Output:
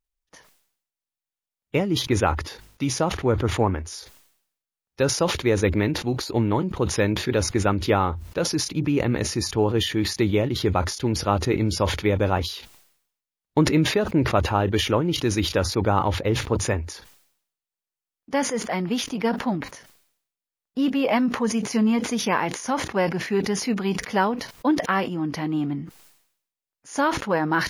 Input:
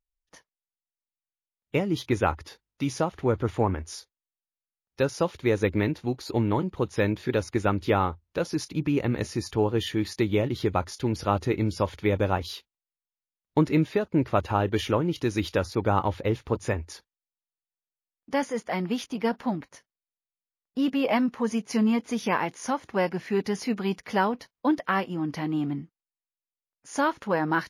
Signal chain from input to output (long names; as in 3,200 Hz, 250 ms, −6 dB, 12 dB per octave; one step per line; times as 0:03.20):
level that may fall only so fast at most 82 dB per second
level +2.5 dB